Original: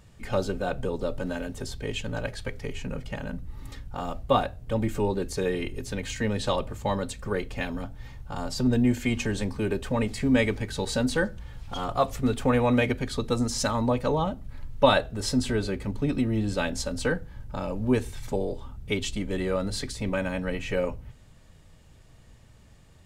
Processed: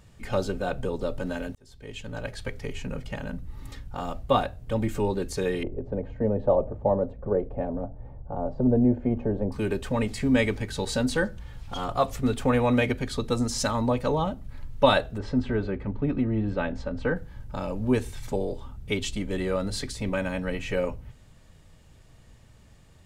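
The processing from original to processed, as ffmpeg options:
-filter_complex "[0:a]asettb=1/sr,asplit=3[s0][s1][s2];[s0]atrim=end=5.634[s3];[s1]atrim=start=5.63:end=9.52,asetpts=PTS-STARTPTS,afade=t=in:d=0.004:c=qsin,afade=t=out:st=3.886:d=0.004:c=qsin,lowpass=f=630:t=q:w=2.4[s4];[s2]atrim=start=9.516[s5];[s3][s4]acrossfade=d=0.004:c1=hsin:c2=qsin[s6];[s6][s5]acrossfade=d=0.004:c1=qsin:c2=hsin,asplit=3[s7][s8][s9];[s7]afade=t=out:st=15.17:d=0.02[s10];[s8]lowpass=1900,afade=t=in:st=15.17:d=0.02,afade=t=out:st=17.15:d=0.02[s11];[s9]afade=t=in:st=17.15:d=0.02[s12];[s10][s11][s12]amix=inputs=3:normalize=0,asplit=2[s13][s14];[s13]atrim=end=1.55,asetpts=PTS-STARTPTS,afade=t=out:st=1.546:d=0.004:c=hsin[s15];[s14]atrim=start=1.55,asetpts=PTS-STARTPTS,afade=t=in:d=0.93[s16];[s15][s16]concat=n=2:v=0:a=1"

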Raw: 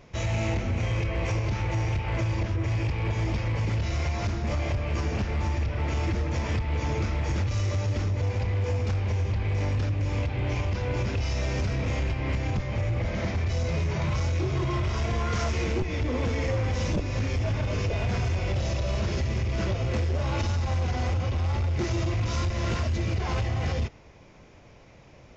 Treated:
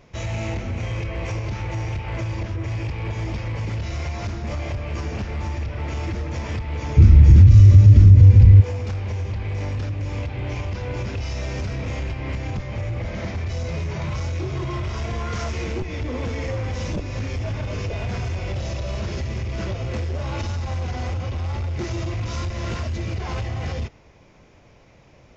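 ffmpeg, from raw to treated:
-filter_complex "[0:a]asplit=3[s0][s1][s2];[s0]afade=t=out:st=6.96:d=0.02[s3];[s1]asubboost=boost=10.5:cutoff=210,afade=t=in:st=6.96:d=0.02,afade=t=out:st=8.6:d=0.02[s4];[s2]afade=t=in:st=8.6:d=0.02[s5];[s3][s4][s5]amix=inputs=3:normalize=0"

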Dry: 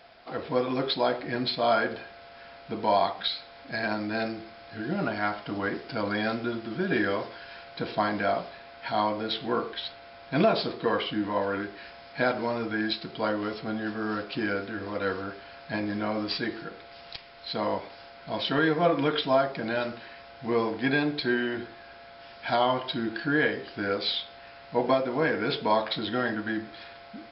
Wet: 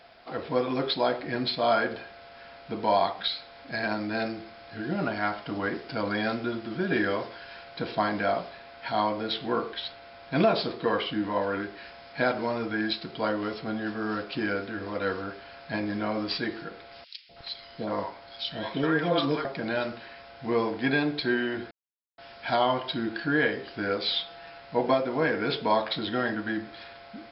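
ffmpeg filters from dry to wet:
-filter_complex "[0:a]asettb=1/sr,asplit=3[s0][s1][s2];[s0]atrim=end=17.044[s3];[s1]atrim=start=17.04:end=19.45,asetpts=PTS-STARTPTS,afade=t=in:d=0.004:c=qsin,afade=t=out:st=2.406:d=0.004:c=qsin,acrossover=split=690|2400[s4][s5][s6];[s4]adelay=250[s7];[s5]adelay=320[s8];[s7][s8][s6]amix=inputs=3:normalize=0,atrim=end_sample=106281[s9];[s2]atrim=start=19.446[s10];[s3][s9]acrossfade=d=0.004:c1=hsin:c2=qsin[s11];[s11][s10]acrossfade=d=0.004:c1=qsin:c2=hsin,asettb=1/sr,asplit=3[s12][s13][s14];[s12]atrim=end=24.114[s15];[s13]atrim=start=24.11:end=24.6,asetpts=PTS-STARTPTS,afade=t=in:d=0.004:c=qsin,afade=t=out:st=0.486:d=0.004:c=qsin,aecho=1:1:6.1:0.65,atrim=end_sample=21609[s16];[s14]atrim=start=24.596[s17];[s15][s16]acrossfade=d=0.004:c1=hsin:c2=qsin[s18];[s18][s17]acrossfade=d=0.004:c1=qsin:c2=hsin,asplit=3[s19][s20][s21];[s19]atrim=end=21.71,asetpts=PTS-STARTPTS,afade=t=out:st=21.706:d=0.004:c=hsin[s22];[s20]atrim=start=21.71:end=22.18,asetpts=PTS-STARTPTS,volume=0[s23];[s21]atrim=start=22.18,asetpts=PTS-STARTPTS,afade=t=in:d=0.004:c=hsin[s24];[s22][s23][s24]concat=n=3:v=0:a=1"

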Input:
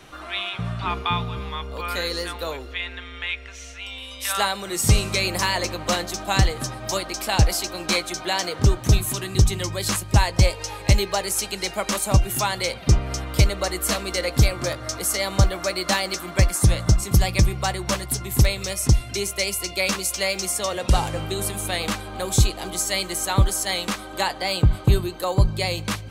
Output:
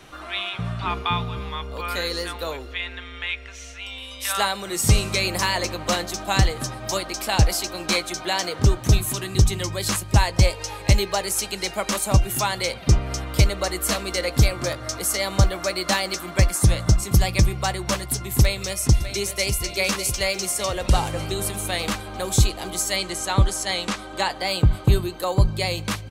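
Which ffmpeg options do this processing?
-filter_complex "[0:a]asplit=2[s0][s1];[s1]afade=t=in:st=18.4:d=0.01,afade=t=out:st=19.5:d=0.01,aecho=0:1:600|1200|1800|2400|3000|3600|4200|4800:0.281838|0.183195|0.119077|0.0773998|0.0503099|0.0327014|0.0212559|0.0138164[s2];[s0][s2]amix=inputs=2:normalize=0,asettb=1/sr,asplit=3[s3][s4][s5];[s3]atrim=end=22.964[s6];[s4]atrim=start=22.96:end=24.31,asetpts=PTS-STARTPTS,afade=t=in:d=0.004:c=qsin,afade=t=out:st=1.346:d=0.004:c=qsin,lowpass=8800[s7];[s5]atrim=start=24.306[s8];[s6][s7]acrossfade=d=0.004:c1=hsin:c2=qsin[s9];[s9][s8]acrossfade=d=0.004:c1=qsin:c2=hsin"

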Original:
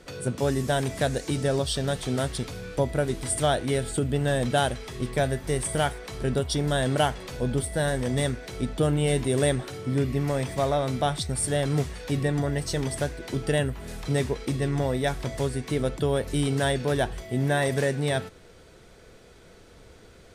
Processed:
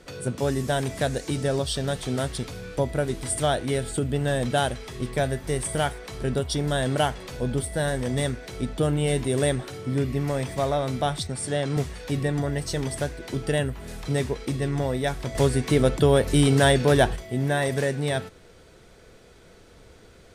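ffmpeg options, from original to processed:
-filter_complex "[0:a]asettb=1/sr,asplit=3[s0][s1][s2];[s0]atrim=end=11.274[s3];[s1]atrim=start=11.27:end=11.77,asetpts=PTS-STARTPTS,afade=t=in:d=0.004:c=qsin,afade=t=out:st=0.496:d=0.004:c=qsin,highpass=120,lowpass=7700[s4];[s2]atrim=start=11.766[s5];[s3][s4]acrossfade=d=0.004:c1=hsin:c2=qsin[s6];[s6][s5]acrossfade=d=0.004:c1=qsin:c2=hsin,asplit=3[s7][s8][s9];[s7]atrim=end=15.352[s10];[s8]atrim=start=15.348:end=17.162,asetpts=PTS-STARTPTS,volume=2.11[s11];[s9]atrim=start=17.158[s12];[s10][s11]acrossfade=d=0.004:c1=hsin:c2=hsin[s13];[s13][s12]acrossfade=d=0.004:c1=hsin:c2=hsin"

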